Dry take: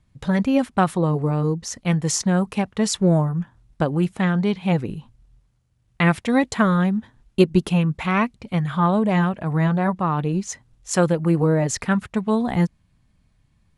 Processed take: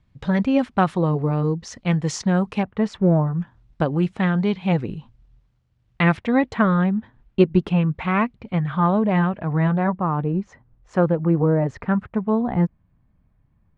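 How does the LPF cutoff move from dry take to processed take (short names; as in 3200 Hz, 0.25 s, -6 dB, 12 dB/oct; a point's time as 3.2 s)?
4400 Hz
from 2.63 s 1900 Hz
from 3.27 s 4400 Hz
from 6.17 s 2600 Hz
from 9.91 s 1400 Hz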